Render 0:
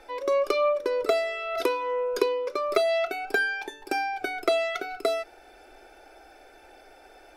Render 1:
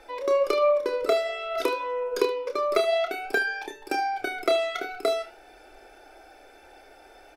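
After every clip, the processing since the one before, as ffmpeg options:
ffmpeg -i in.wav -filter_complex "[0:a]flanger=delay=5.9:depth=5.5:regen=-88:speed=0.53:shape=triangular,asplit=2[link_01][link_02];[link_02]aecho=0:1:29|75:0.398|0.158[link_03];[link_01][link_03]amix=inputs=2:normalize=0,volume=4.5dB" out.wav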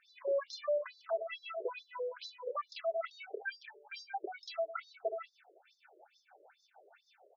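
ffmpeg -i in.wav -filter_complex "[0:a]acrossover=split=480[link_01][link_02];[link_01]aeval=exprs='val(0)*(1-0.7/2+0.7/2*cos(2*PI*6.4*n/s))':channel_layout=same[link_03];[link_02]aeval=exprs='val(0)*(1-0.7/2-0.7/2*cos(2*PI*6.4*n/s))':channel_layout=same[link_04];[link_03][link_04]amix=inputs=2:normalize=0,volume=24.5dB,asoftclip=hard,volume=-24.5dB,afftfilt=real='re*between(b*sr/1024,440*pow(5100/440,0.5+0.5*sin(2*PI*2.3*pts/sr))/1.41,440*pow(5100/440,0.5+0.5*sin(2*PI*2.3*pts/sr))*1.41)':imag='im*between(b*sr/1024,440*pow(5100/440,0.5+0.5*sin(2*PI*2.3*pts/sr))/1.41,440*pow(5100/440,0.5+0.5*sin(2*PI*2.3*pts/sr))*1.41)':win_size=1024:overlap=0.75,volume=-3dB" out.wav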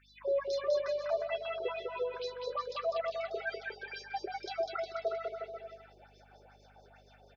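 ffmpeg -i in.wav -af "aeval=exprs='val(0)+0.000355*(sin(2*PI*50*n/s)+sin(2*PI*2*50*n/s)/2+sin(2*PI*3*50*n/s)/3+sin(2*PI*4*50*n/s)/4+sin(2*PI*5*50*n/s)/5)':channel_layout=same,aecho=1:1:200|360|488|590.4|672.3:0.631|0.398|0.251|0.158|0.1,volume=1.5dB" out.wav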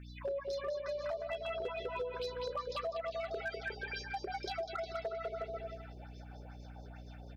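ffmpeg -i in.wav -af "aeval=exprs='val(0)+0.00282*(sin(2*PI*60*n/s)+sin(2*PI*2*60*n/s)/2+sin(2*PI*3*60*n/s)/3+sin(2*PI*4*60*n/s)/4+sin(2*PI*5*60*n/s)/5)':channel_layout=same,acompressor=threshold=-37dB:ratio=20,asoftclip=type=hard:threshold=-34dB,volume=2.5dB" out.wav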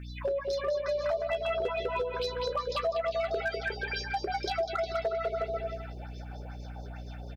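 ffmpeg -i in.wav -filter_complex "[0:a]asplit=2[link_01][link_02];[link_02]adelay=15,volume=-14dB[link_03];[link_01][link_03]amix=inputs=2:normalize=0,volume=7.5dB" out.wav

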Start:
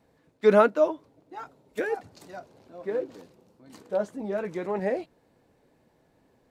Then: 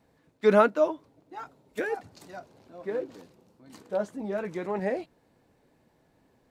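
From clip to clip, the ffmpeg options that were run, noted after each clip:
ffmpeg -i in.wav -af "equalizer=frequency=490:width=1.5:gain=-2.5" out.wav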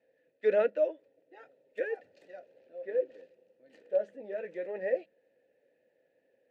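ffmpeg -i in.wav -filter_complex "[0:a]asplit=3[link_01][link_02][link_03];[link_01]bandpass=frequency=530:width_type=q:width=8,volume=0dB[link_04];[link_02]bandpass=frequency=1840:width_type=q:width=8,volume=-6dB[link_05];[link_03]bandpass=frequency=2480:width_type=q:width=8,volume=-9dB[link_06];[link_04][link_05][link_06]amix=inputs=3:normalize=0,bandreject=frequency=50:width_type=h:width=6,bandreject=frequency=100:width_type=h:width=6,bandreject=frequency=150:width_type=h:width=6,bandreject=frequency=200:width_type=h:width=6,volume=5dB" out.wav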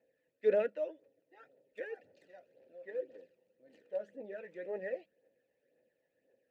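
ffmpeg -i in.wav -af "aphaser=in_gain=1:out_gain=1:delay=1.1:decay=0.5:speed=1.9:type=triangular,volume=-6dB" out.wav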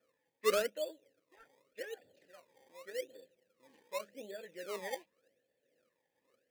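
ffmpeg -i in.wav -filter_complex "[0:a]acrossover=split=840[link_01][link_02];[link_01]acrusher=samples=22:mix=1:aa=0.000001:lfo=1:lforange=22:lforate=0.86[link_03];[link_02]aeval=exprs='(mod(56.2*val(0)+1,2)-1)/56.2':channel_layout=same[link_04];[link_03][link_04]amix=inputs=2:normalize=0,volume=-1.5dB" out.wav

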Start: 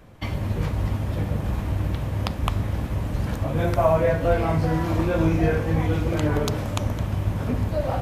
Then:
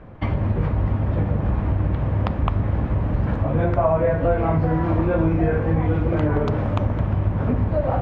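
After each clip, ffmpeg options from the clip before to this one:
ffmpeg -i in.wav -af "lowpass=1700,acompressor=threshold=-25dB:ratio=2.5,volume=7dB" out.wav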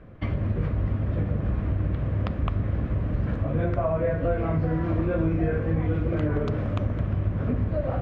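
ffmpeg -i in.wav -af "equalizer=frequency=870:width_type=o:width=0.44:gain=-10.5,volume=-4.5dB" out.wav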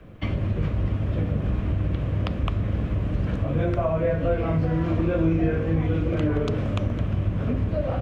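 ffmpeg -i in.wav -filter_complex "[0:a]acrossover=split=150|500|1100[link_01][link_02][link_03][link_04];[link_02]asplit=2[link_05][link_06];[link_06]adelay=43,volume=-3.5dB[link_07];[link_05][link_07]amix=inputs=2:normalize=0[link_08];[link_04]aexciter=amount=1.7:drive=7.8:freq=2500[link_09];[link_01][link_08][link_03][link_09]amix=inputs=4:normalize=0,volume=1dB" out.wav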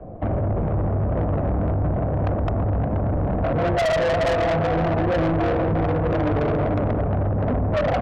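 ffmpeg -i in.wav -filter_complex "[0:a]lowpass=frequency=720:width_type=q:width=4.9,asplit=2[link_01][link_02];[link_02]aecho=0:1:118|355|478|499:0.316|0.422|0.316|0.119[link_03];[link_01][link_03]amix=inputs=2:normalize=0,asoftclip=type=tanh:threshold=-24.5dB,volume=6dB" out.wav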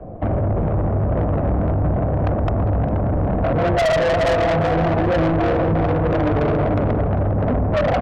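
ffmpeg -i in.wav -af "aecho=1:1:403:0.15,volume=3dB" out.wav

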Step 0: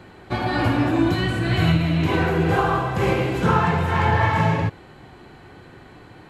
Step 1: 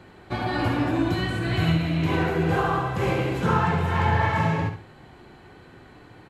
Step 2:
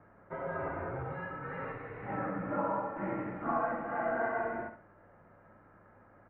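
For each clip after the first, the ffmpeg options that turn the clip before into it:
ffmpeg -i in.wav -af "aecho=1:1:68|136|204:0.355|0.0958|0.0259,volume=-4dB" out.wav
ffmpeg -i in.wav -af "aeval=exprs='val(0)+0.0224*(sin(2*PI*60*n/s)+sin(2*PI*2*60*n/s)/2+sin(2*PI*3*60*n/s)/3+sin(2*PI*4*60*n/s)/4+sin(2*PI*5*60*n/s)/5)':channel_layout=same,highpass=frequency=420:width_type=q:width=0.5412,highpass=frequency=420:width_type=q:width=1.307,lowpass=frequency=2000:width_type=q:width=0.5176,lowpass=frequency=2000:width_type=q:width=0.7071,lowpass=frequency=2000:width_type=q:width=1.932,afreqshift=-200,volume=-7.5dB" out.wav

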